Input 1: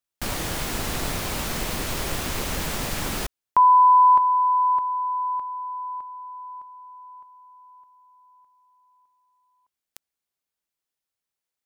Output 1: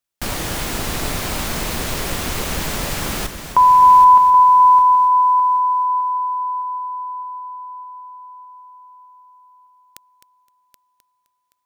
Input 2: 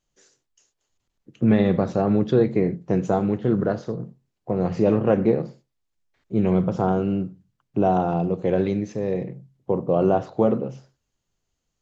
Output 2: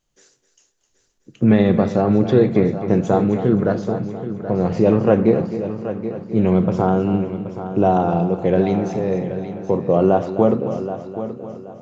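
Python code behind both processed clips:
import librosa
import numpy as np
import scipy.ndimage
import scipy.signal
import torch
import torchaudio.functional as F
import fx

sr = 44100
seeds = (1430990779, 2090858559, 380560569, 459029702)

y = fx.echo_heads(x, sr, ms=259, heads='first and third', feedback_pct=45, wet_db=-12)
y = y * 10.0 ** (4.0 / 20.0)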